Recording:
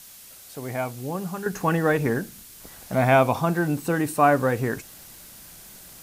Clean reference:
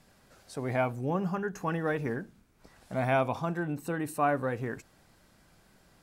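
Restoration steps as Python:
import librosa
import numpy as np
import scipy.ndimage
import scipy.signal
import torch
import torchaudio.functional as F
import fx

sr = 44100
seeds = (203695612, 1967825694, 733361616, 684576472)

y = fx.noise_reduce(x, sr, print_start_s=0.0, print_end_s=0.5, reduce_db=17.0)
y = fx.gain(y, sr, db=fx.steps((0.0, 0.0), (1.46, -9.0)))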